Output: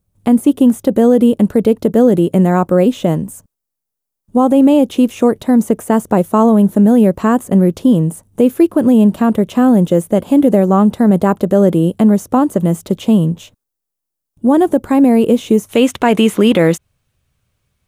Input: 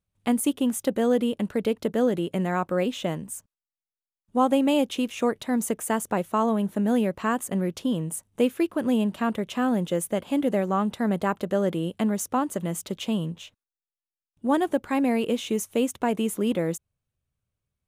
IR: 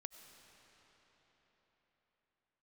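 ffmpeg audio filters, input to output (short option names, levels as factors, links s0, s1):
-filter_complex "[0:a]acrossover=split=4100[s0][s1];[s1]acompressor=threshold=0.00562:ratio=4:attack=1:release=60[s2];[s0][s2]amix=inputs=2:normalize=0,asetnsamples=n=441:p=0,asendcmd='15.69 equalizer g 4',equalizer=f=2500:w=0.44:g=-12.5,alimiter=level_in=7.5:limit=0.891:release=50:level=0:latency=1,volume=0.891"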